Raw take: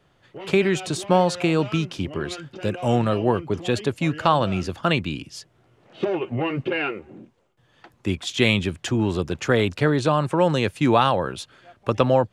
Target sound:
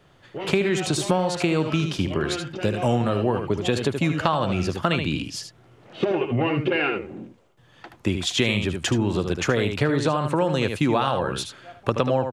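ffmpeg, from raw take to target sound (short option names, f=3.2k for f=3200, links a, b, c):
-af "aecho=1:1:76:0.398,acompressor=threshold=-24dB:ratio=4,volume=5dB"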